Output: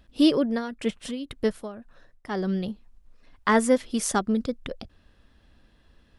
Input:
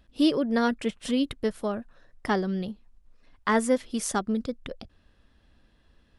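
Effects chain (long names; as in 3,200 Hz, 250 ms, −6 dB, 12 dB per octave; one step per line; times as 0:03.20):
0:00.41–0:02.63: amplitude tremolo 1.9 Hz, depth 78%
level +3 dB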